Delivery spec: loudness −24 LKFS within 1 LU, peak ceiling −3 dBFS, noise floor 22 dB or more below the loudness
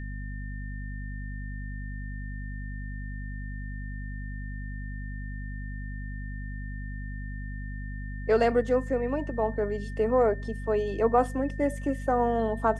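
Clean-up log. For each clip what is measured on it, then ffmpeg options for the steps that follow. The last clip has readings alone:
mains hum 50 Hz; hum harmonics up to 250 Hz; level of the hum −33 dBFS; interfering tone 1,800 Hz; level of the tone −45 dBFS; integrated loudness −31.0 LKFS; sample peak −9.5 dBFS; target loudness −24.0 LKFS
→ -af "bandreject=frequency=50:width_type=h:width=6,bandreject=frequency=100:width_type=h:width=6,bandreject=frequency=150:width_type=h:width=6,bandreject=frequency=200:width_type=h:width=6,bandreject=frequency=250:width_type=h:width=6"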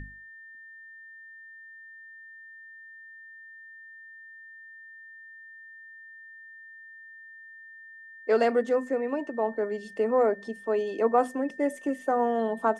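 mains hum none found; interfering tone 1,800 Hz; level of the tone −45 dBFS
→ -af "bandreject=frequency=1800:width=30"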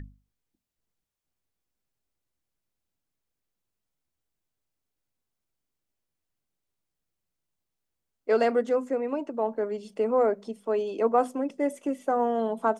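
interfering tone none found; integrated loudness −27.0 LKFS; sample peak −10.0 dBFS; target loudness −24.0 LKFS
→ -af "volume=3dB"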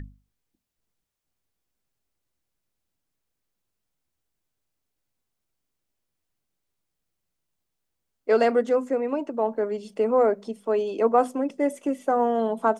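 integrated loudness −24.0 LKFS; sample peak −7.0 dBFS; background noise floor −81 dBFS

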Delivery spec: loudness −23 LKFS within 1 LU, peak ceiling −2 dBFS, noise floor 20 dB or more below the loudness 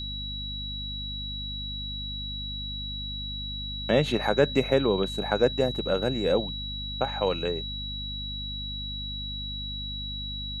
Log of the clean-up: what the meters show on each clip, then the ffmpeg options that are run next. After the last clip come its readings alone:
mains hum 50 Hz; hum harmonics up to 250 Hz; level of the hum −35 dBFS; interfering tone 3,900 Hz; level of the tone −34 dBFS; integrated loudness −29.0 LKFS; sample peak −8.5 dBFS; target loudness −23.0 LKFS
→ -af "bandreject=frequency=50:width_type=h:width=6,bandreject=frequency=100:width_type=h:width=6,bandreject=frequency=150:width_type=h:width=6,bandreject=frequency=200:width_type=h:width=6,bandreject=frequency=250:width_type=h:width=6"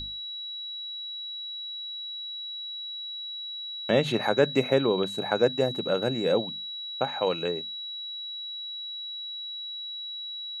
mains hum none found; interfering tone 3,900 Hz; level of the tone −34 dBFS
→ -af "bandreject=frequency=3900:width=30"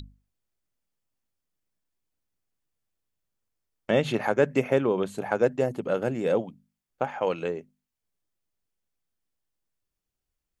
interfering tone none found; integrated loudness −26.5 LKFS; sample peak −9.0 dBFS; target loudness −23.0 LKFS
→ -af "volume=3.5dB"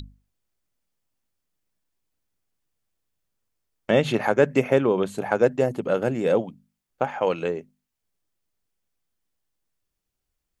integrated loudness −23.0 LKFS; sample peak −5.5 dBFS; background noise floor −82 dBFS

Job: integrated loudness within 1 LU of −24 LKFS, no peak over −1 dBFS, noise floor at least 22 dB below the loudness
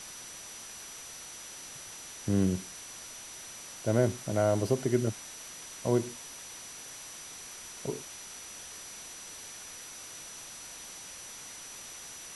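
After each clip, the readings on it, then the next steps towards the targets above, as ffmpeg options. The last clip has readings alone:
interfering tone 5,900 Hz; level of the tone −47 dBFS; background noise floor −46 dBFS; target noise floor −58 dBFS; integrated loudness −35.5 LKFS; sample peak −13.0 dBFS; target loudness −24.0 LKFS
→ -af "bandreject=frequency=5900:width=30"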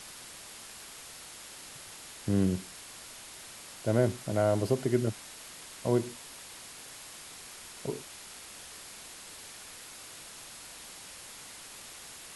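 interfering tone none found; background noise floor −48 dBFS; target noise floor −58 dBFS
→ -af "afftdn=noise_reduction=10:noise_floor=-48"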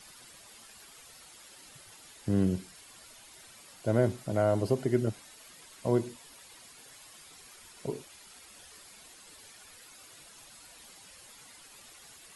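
background noise floor −54 dBFS; integrated loudness −31.0 LKFS; sample peak −13.0 dBFS; target loudness −24.0 LKFS
→ -af "volume=7dB"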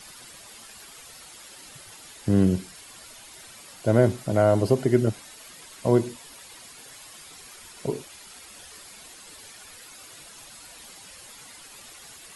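integrated loudness −24.0 LKFS; sample peak −6.0 dBFS; background noise floor −47 dBFS

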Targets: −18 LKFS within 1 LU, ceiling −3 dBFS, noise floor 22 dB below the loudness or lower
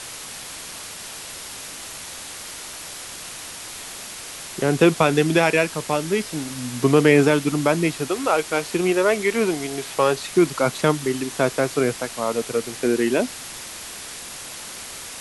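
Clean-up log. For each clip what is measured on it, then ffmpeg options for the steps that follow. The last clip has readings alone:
background noise floor −36 dBFS; target noise floor −43 dBFS; integrated loudness −21.0 LKFS; sample peak −3.0 dBFS; target loudness −18.0 LKFS
→ -af "afftdn=noise_reduction=7:noise_floor=-36"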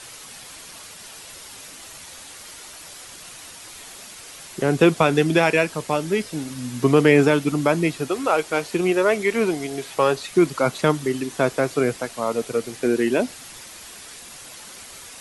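background noise floor −41 dBFS; target noise floor −43 dBFS
→ -af "afftdn=noise_reduction=6:noise_floor=-41"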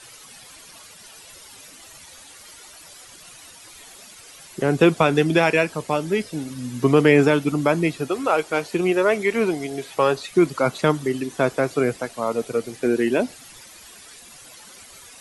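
background noise floor −45 dBFS; integrated loudness −21.0 LKFS; sample peak −3.0 dBFS; target loudness −18.0 LKFS
→ -af "volume=3dB,alimiter=limit=-3dB:level=0:latency=1"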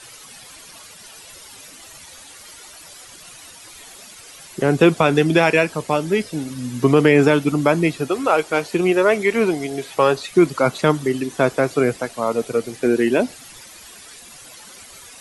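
integrated loudness −18.5 LKFS; sample peak −3.0 dBFS; background noise floor −42 dBFS

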